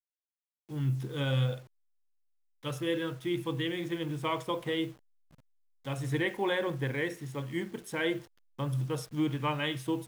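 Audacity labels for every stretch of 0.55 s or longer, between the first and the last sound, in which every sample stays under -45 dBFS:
1.620000	2.640000	silence
4.920000	5.850000	silence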